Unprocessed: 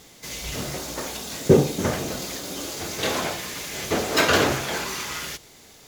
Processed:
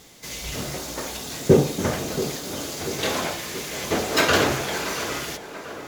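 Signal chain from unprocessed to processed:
tape delay 682 ms, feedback 62%, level −10.5 dB, low-pass 2,100 Hz

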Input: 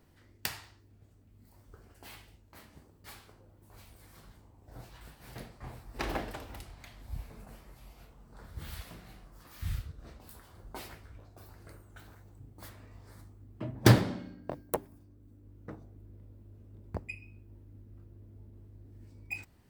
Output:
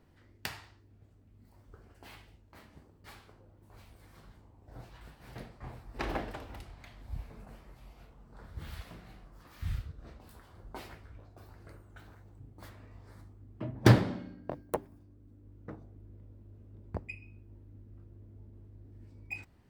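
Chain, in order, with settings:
high-shelf EQ 5,500 Hz −10.5 dB

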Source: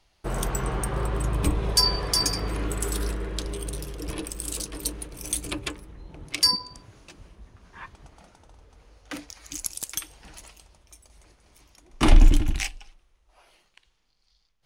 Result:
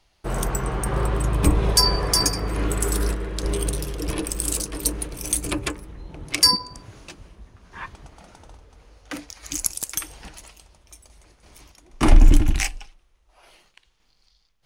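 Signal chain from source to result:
dynamic equaliser 3,500 Hz, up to −7 dB, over −44 dBFS, Q 1.5
sample-and-hold tremolo 3.5 Hz
level +8.5 dB

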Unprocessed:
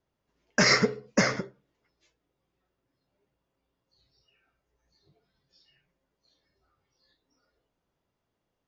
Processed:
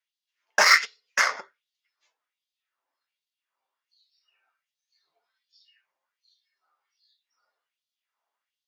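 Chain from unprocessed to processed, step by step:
harmonic generator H 7 −23 dB, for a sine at −9 dBFS
auto-filter high-pass sine 1.3 Hz 820–4,000 Hz
level +3 dB

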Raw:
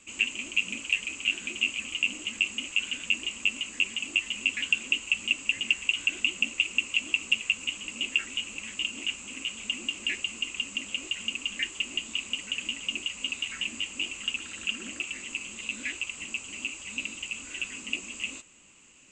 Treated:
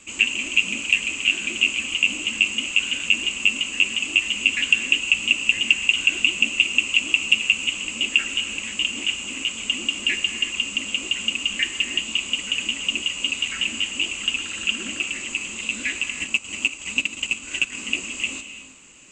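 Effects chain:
reverb whose tail is shaped and stops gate 390 ms flat, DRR 8.5 dB
0:16.14–0:17.78: transient designer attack +5 dB, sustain −9 dB
level +7.5 dB

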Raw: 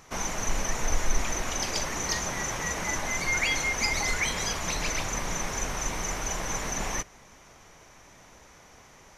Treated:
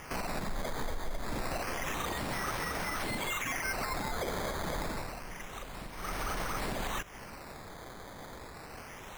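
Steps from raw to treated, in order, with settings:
0:02.95–0:03.64: high-shelf EQ 4,100 Hz +12 dB
downward compressor 16 to 1, threshold −34 dBFS, peak gain reduction 18 dB
0:04.88–0:06.23: duck −11 dB, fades 0.26 s
brickwall limiter −32 dBFS, peak gain reduction 8.5 dB
sample-and-hold swept by an LFO 11×, swing 100% 0.28 Hz
level +6.5 dB

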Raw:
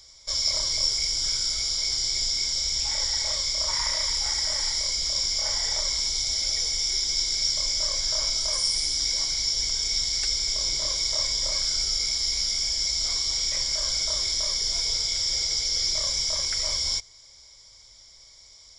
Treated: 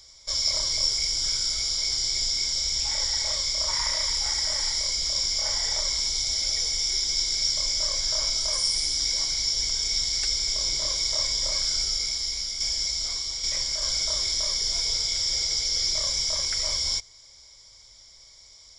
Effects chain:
0:11.77–0:13.82: shaped tremolo saw down 1.2 Hz, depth 50%

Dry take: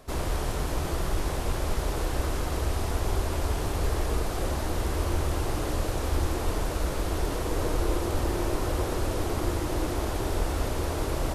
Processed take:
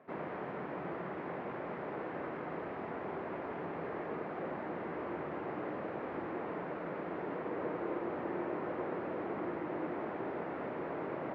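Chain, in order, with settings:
elliptic band-pass filter 170–2,100 Hz, stop band 70 dB
level −6 dB

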